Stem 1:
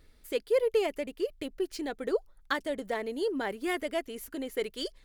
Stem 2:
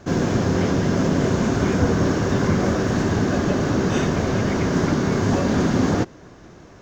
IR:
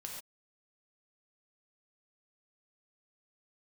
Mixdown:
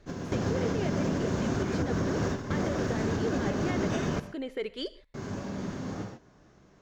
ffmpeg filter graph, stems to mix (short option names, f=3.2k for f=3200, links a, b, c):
-filter_complex "[0:a]lowpass=3.8k,alimiter=level_in=2.5dB:limit=-24dB:level=0:latency=1:release=27,volume=-2.5dB,volume=0dB,asplit=3[a][b][c];[b]volume=-10dB[d];[1:a]alimiter=limit=-12dB:level=0:latency=1:release=240,volume=-6dB,asplit=3[e][f][g];[e]atrim=end=4.2,asetpts=PTS-STARTPTS,afade=t=out:st=4.196:d=0.004:c=hsin[h];[f]atrim=start=4.2:end=5.14,asetpts=PTS-STARTPTS,volume=0[i];[g]atrim=start=5.14,asetpts=PTS-STARTPTS,afade=t=in:d=0.004:c=hsin[j];[h][i][j]concat=n=3:v=0:a=1,asplit=2[k][l];[l]volume=-6dB[m];[c]apad=whole_len=300539[n];[k][n]sidechaingate=range=-33dB:threshold=-52dB:ratio=16:detection=peak[o];[2:a]atrim=start_sample=2205[p];[d][m]amix=inputs=2:normalize=0[q];[q][p]afir=irnorm=-1:irlink=0[r];[a][o][r]amix=inputs=3:normalize=0,alimiter=limit=-19.5dB:level=0:latency=1:release=289"